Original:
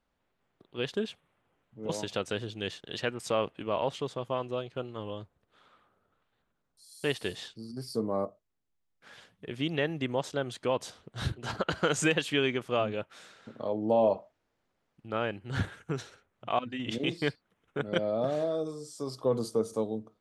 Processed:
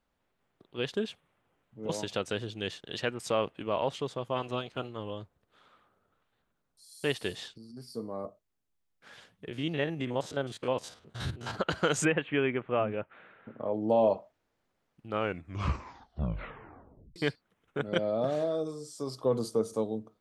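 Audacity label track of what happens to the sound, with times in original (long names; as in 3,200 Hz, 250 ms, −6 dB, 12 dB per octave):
4.350000	4.870000	ceiling on every frequency bin ceiling under each frame's peak by 12 dB
7.580000	8.250000	tuned comb filter 240 Hz, decay 0.4 s
9.480000	11.550000	spectrum averaged block by block every 50 ms
12.050000	13.740000	inverse Chebyshev low-pass filter stop band from 4,900 Hz
15.090000	15.090000	tape stop 2.07 s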